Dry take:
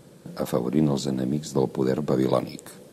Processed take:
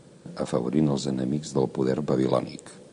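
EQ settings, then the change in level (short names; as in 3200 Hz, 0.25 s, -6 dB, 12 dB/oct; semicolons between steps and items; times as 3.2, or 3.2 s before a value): brick-wall FIR low-pass 10000 Hz; -1.0 dB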